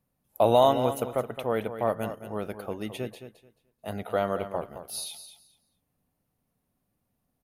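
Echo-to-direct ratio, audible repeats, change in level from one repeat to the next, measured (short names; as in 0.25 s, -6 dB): -11.0 dB, 2, -14.0 dB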